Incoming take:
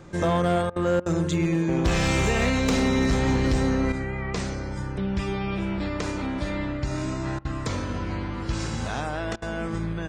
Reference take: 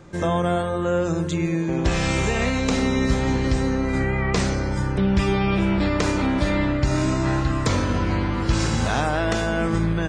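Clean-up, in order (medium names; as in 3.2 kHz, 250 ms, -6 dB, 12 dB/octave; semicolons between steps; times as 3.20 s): clip repair -16.5 dBFS; interpolate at 0.70/1.00/7.39/9.36 s, 59 ms; trim 0 dB, from 3.92 s +7.5 dB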